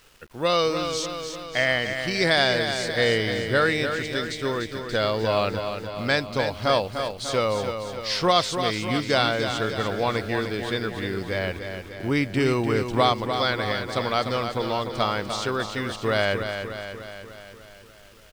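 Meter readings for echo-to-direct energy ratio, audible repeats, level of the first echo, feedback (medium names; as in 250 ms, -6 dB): -5.5 dB, 7, -7.5 dB, 59%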